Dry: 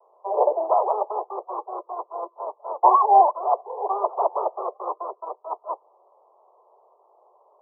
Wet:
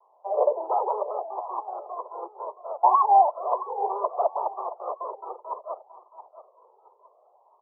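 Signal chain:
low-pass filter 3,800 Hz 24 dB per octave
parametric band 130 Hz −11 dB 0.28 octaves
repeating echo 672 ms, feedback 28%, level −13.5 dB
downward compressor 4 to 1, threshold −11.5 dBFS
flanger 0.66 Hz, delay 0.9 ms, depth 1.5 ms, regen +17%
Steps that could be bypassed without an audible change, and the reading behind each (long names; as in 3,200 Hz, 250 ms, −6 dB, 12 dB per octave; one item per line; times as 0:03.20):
low-pass filter 3,800 Hz: nothing at its input above 1,300 Hz
parametric band 130 Hz: nothing at its input below 340 Hz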